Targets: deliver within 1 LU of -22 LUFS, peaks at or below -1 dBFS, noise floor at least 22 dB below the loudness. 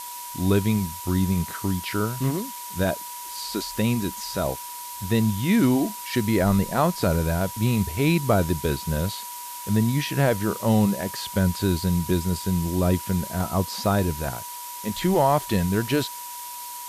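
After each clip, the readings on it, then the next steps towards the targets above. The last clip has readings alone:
steady tone 970 Hz; tone level -37 dBFS; noise floor -36 dBFS; noise floor target -47 dBFS; loudness -24.5 LUFS; peak -8.0 dBFS; loudness target -22.0 LUFS
-> notch 970 Hz, Q 30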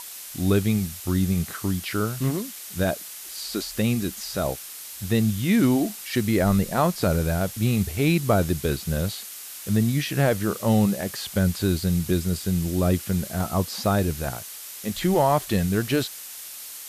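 steady tone none; noise floor -39 dBFS; noise floor target -47 dBFS
-> denoiser 8 dB, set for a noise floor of -39 dBFS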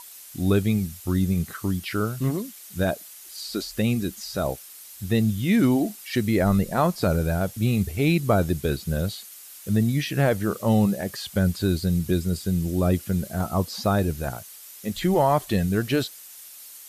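noise floor -44 dBFS; noise floor target -47 dBFS
-> denoiser 6 dB, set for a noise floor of -44 dBFS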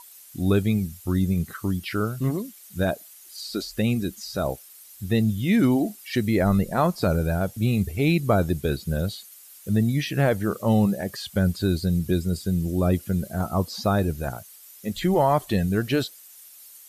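noise floor -48 dBFS; loudness -24.5 LUFS; peak -8.5 dBFS; loudness target -22.0 LUFS
-> gain +2.5 dB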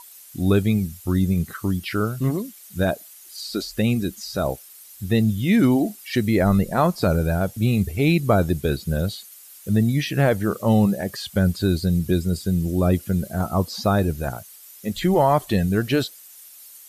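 loudness -22.0 LUFS; peak -6.0 dBFS; noise floor -45 dBFS

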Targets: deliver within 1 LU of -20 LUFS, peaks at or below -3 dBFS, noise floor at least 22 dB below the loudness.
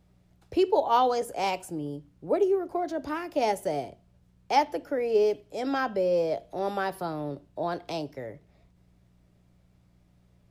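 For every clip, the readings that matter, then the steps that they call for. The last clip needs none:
hum 60 Hz; harmonics up to 180 Hz; hum level -58 dBFS; loudness -28.5 LUFS; peak -10.5 dBFS; loudness target -20.0 LUFS
-> de-hum 60 Hz, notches 3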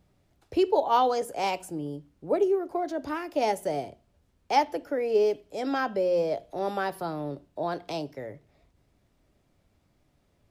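hum none; loudness -28.5 LUFS; peak -10.5 dBFS; loudness target -20.0 LUFS
-> gain +8.5 dB; limiter -3 dBFS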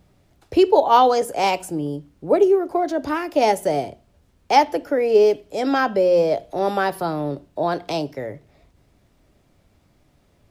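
loudness -20.0 LUFS; peak -3.0 dBFS; noise floor -61 dBFS

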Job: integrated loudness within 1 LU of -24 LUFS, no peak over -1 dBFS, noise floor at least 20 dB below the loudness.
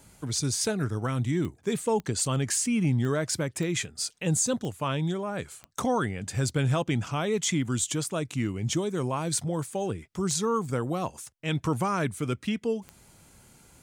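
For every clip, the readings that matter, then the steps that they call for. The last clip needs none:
clicks 8; loudness -28.5 LUFS; peak -14.5 dBFS; loudness target -24.0 LUFS
-> de-click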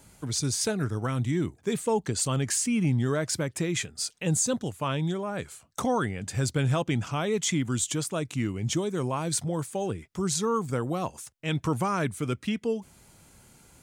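clicks 0; loudness -28.5 LUFS; peak -14.5 dBFS; loudness target -24.0 LUFS
-> gain +4.5 dB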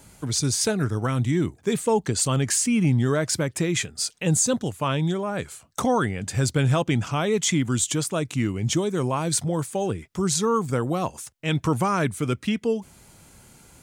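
loudness -24.0 LUFS; peak -10.0 dBFS; noise floor -54 dBFS

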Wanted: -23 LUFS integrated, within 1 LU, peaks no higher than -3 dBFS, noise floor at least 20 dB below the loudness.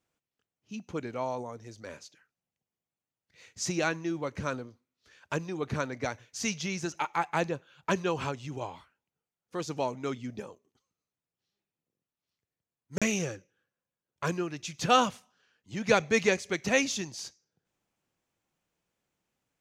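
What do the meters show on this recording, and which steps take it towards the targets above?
dropouts 1; longest dropout 36 ms; loudness -31.5 LUFS; peak -8.0 dBFS; loudness target -23.0 LUFS
-> interpolate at 12.98, 36 ms; gain +8.5 dB; limiter -3 dBFS

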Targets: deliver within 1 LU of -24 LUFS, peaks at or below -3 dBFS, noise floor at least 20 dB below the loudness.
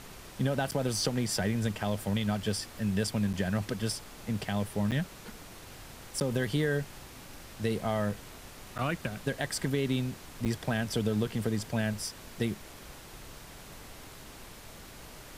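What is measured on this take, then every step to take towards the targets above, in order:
dropouts 6; longest dropout 8.2 ms; noise floor -49 dBFS; noise floor target -52 dBFS; loudness -32.0 LUFS; peak -17.0 dBFS; loudness target -24.0 LUFS
-> interpolate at 0.71/3.33/4.91/6.2/8.78/10.45, 8.2 ms; noise print and reduce 6 dB; gain +8 dB

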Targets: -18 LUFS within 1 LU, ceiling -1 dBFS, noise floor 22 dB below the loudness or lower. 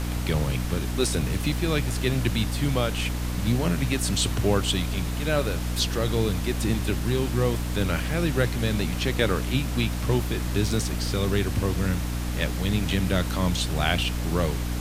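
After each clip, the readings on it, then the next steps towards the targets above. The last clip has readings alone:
hum 60 Hz; harmonics up to 300 Hz; hum level -26 dBFS; noise floor -29 dBFS; noise floor target -48 dBFS; loudness -25.5 LUFS; peak -7.0 dBFS; loudness target -18.0 LUFS
-> notches 60/120/180/240/300 Hz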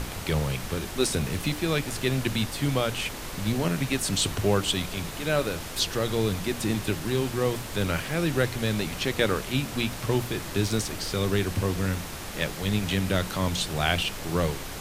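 hum none; noise floor -37 dBFS; noise floor target -50 dBFS
-> noise print and reduce 13 dB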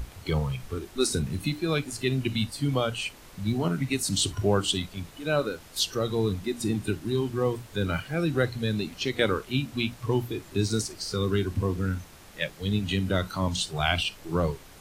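noise floor -49 dBFS; noise floor target -51 dBFS
-> noise print and reduce 6 dB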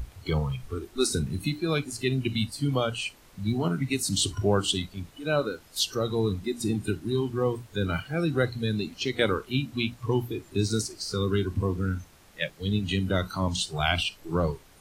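noise floor -55 dBFS; loudness -28.5 LUFS; peak -9.5 dBFS; loudness target -18.0 LUFS
-> gain +10.5 dB; limiter -1 dBFS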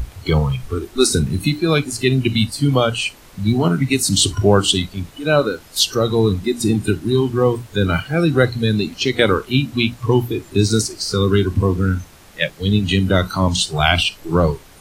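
loudness -18.0 LUFS; peak -1.0 dBFS; noise floor -44 dBFS

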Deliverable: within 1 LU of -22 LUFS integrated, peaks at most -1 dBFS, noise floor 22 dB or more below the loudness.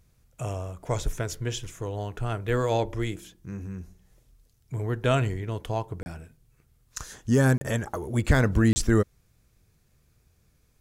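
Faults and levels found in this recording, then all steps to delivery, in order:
dropouts 3; longest dropout 30 ms; loudness -27.5 LUFS; peak -9.0 dBFS; loudness target -22.0 LUFS
-> interpolate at 6.03/7.58/8.73, 30 ms; gain +5.5 dB

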